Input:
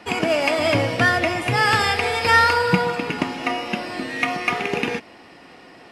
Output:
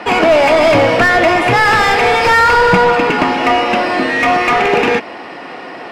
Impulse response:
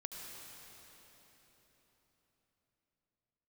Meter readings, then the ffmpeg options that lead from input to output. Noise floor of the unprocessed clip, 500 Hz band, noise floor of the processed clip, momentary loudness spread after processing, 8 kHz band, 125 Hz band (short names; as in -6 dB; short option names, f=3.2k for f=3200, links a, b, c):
-46 dBFS, +11.5 dB, -30 dBFS, 15 LU, +5.0 dB, +3.5 dB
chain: -filter_complex "[0:a]asplit=2[a][b];[b]highpass=f=720:p=1,volume=24dB,asoftclip=type=tanh:threshold=-4dB[c];[a][c]amix=inputs=2:normalize=0,lowpass=f=1.1k:p=1,volume=-6dB,volume=4.5dB"